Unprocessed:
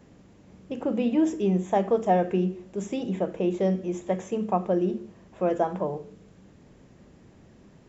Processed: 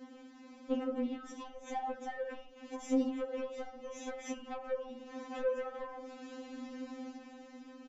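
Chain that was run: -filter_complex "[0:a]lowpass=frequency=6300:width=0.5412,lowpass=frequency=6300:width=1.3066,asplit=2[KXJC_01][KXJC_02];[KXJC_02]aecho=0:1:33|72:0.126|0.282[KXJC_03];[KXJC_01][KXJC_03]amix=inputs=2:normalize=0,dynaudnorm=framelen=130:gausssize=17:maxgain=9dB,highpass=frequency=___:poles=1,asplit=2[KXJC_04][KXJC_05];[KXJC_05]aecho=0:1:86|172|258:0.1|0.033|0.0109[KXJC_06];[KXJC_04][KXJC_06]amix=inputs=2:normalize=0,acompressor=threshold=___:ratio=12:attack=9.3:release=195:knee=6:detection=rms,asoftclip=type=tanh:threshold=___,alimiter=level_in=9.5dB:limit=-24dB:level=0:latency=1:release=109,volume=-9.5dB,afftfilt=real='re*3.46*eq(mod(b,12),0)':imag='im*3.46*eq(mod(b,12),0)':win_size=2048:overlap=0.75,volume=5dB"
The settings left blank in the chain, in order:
49, -28dB, -29dB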